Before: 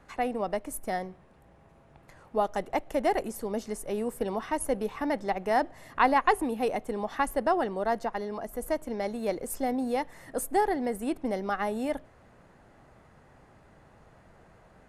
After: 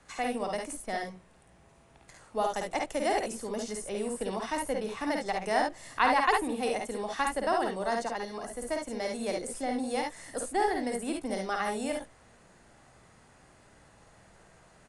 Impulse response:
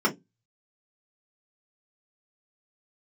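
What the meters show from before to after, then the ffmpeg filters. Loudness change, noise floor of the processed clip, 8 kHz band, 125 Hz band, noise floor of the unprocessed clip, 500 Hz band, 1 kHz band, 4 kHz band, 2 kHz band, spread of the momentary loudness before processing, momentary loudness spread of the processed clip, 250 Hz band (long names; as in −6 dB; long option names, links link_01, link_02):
−1.5 dB, −59 dBFS, +1.5 dB, −3.0 dB, −58 dBFS, −2.5 dB, −1.5 dB, +5.0 dB, +1.5 dB, 8 LU, 8 LU, −2.5 dB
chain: -filter_complex "[0:a]aecho=1:1:52|69:0.631|0.501,acrossover=split=250|540|4400[link_01][link_02][link_03][link_04];[link_04]acompressor=threshold=-51dB:ratio=6[link_05];[link_01][link_02][link_03][link_05]amix=inputs=4:normalize=0,aresample=22050,aresample=44100,crystalizer=i=4.5:c=0,volume=-5dB"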